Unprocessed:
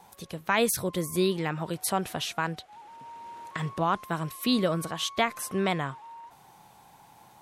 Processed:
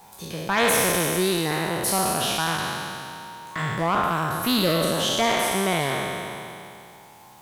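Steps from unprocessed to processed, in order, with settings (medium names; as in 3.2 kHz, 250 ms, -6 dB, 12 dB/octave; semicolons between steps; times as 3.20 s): spectral sustain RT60 2.57 s; in parallel at -9 dB: word length cut 8-bit, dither triangular; on the sum: valve stage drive 13 dB, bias 0.35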